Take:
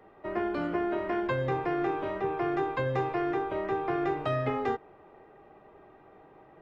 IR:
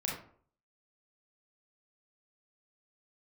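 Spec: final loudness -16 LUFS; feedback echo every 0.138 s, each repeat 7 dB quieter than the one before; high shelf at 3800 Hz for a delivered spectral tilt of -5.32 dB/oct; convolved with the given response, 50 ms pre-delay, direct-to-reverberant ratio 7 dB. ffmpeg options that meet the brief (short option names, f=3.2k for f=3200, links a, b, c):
-filter_complex "[0:a]highshelf=f=3.8k:g=6,aecho=1:1:138|276|414|552|690:0.447|0.201|0.0905|0.0407|0.0183,asplit=2[a][b];[1:a]atrim=start_sample=2205,adelay=50[c];[b][c]afir=irnorm=-1:irlink=0,volume=-11dB[d];[a][d]amix=inputs=2:normalize=0,volume=13dB"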